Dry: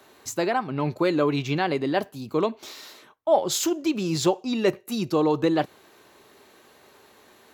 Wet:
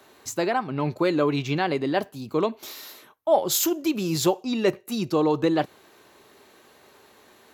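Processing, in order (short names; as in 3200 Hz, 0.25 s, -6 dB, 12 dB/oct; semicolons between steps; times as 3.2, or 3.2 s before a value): 2.52–4.44 bell 13000 Hz +13 dB 0.54 oct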